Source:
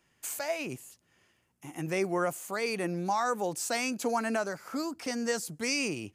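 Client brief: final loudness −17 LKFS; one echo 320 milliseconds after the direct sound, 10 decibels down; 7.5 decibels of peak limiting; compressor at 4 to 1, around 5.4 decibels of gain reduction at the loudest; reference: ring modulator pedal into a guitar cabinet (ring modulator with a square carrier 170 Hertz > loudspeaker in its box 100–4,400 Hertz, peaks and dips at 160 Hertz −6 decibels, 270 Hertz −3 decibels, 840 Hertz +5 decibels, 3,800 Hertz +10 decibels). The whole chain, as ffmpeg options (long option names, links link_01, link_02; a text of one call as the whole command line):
ffmpeg -i in.wav -af "acompressor=threshold=-31dB:ratio=4,alimiter=level_in=5dB:limit=-24dB:level=0:latency=1,volume=-5dB,aecho=1:1:320:0.316,aeval=exprs='val(0)*sgn(sin(2*PI*170*n/s))':channel_layout=same,highpass=100,equalizer=frequency=160:width_type=q:width=4:gain=-6,equalizer=frequency=270:width_type=q:width=4:gain=-3,equalizer=frequency=840:width_type=q:width=4:gain=5,equalizer=frequency=3800:width_type=q:width=4:gain=10,lowpass=frequency=4400:width=0.5412,lowpass=frequency=4400:width=1.3066,volume=21dB" out.wav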